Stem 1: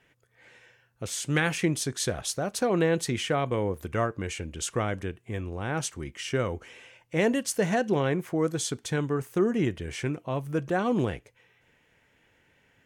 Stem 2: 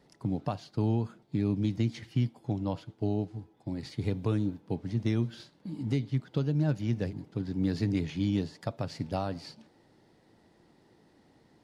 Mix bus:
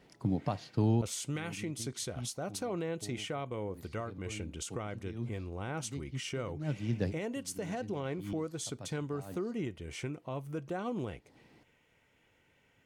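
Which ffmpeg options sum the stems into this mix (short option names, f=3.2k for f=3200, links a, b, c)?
-filter_complex "[0:a]bandreject=f=1.7k:w=6.6,alimiter=limit=-24dB:level=0:latency=1:release=463,volume=-4dB,asplit=2[a][b];[1:a]volume=0dB[c];[b]apad=whole_len=512906[d];[c][d]sidechaincompress=threshold=-55dB:ratio=16:attack=7.6:release=150[e];[a][e]amix=inputs=2:normalize=0"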